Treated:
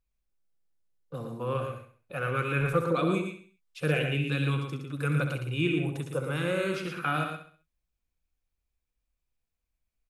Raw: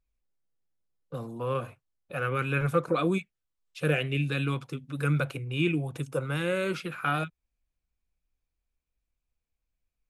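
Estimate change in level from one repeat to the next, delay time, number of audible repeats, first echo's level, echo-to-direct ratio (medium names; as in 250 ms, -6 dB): no regular repeats, 66 ms, 5, -9.5 dB, -4.0 dB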